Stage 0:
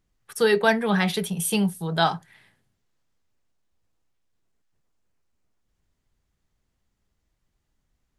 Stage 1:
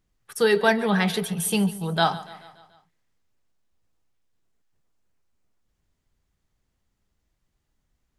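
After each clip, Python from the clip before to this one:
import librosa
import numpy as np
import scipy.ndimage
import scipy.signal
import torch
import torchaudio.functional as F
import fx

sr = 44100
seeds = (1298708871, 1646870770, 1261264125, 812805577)

y = fx.echo_feedback(x, sr, ms=144, feedback_pct=56, wet_db=-17.5)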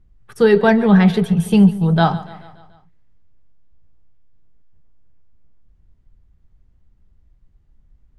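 y = fx.riaa(x, sr, side='playback')
y = y * librosa.db_to_amplitude(4.0)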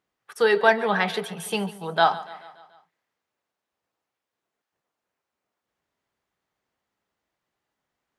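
y = scipy.signal.sosfilt(scipy.signal.butter(2, 630.0, 'highpass', fs=sr, output='sos'), x)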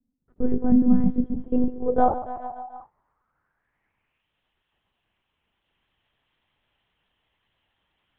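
y = fx.filter_sweep_lowpass(x, sr, from_hz=220.0, to_hz=3100.0, start_s=1.18, end_s=4.33, q=4.5)
y = fx.lpc_monotone(y, sr, seeds[0], pitch_hz=250.0, order=8)
y = y * librosa.db_to_amplitude(5.0)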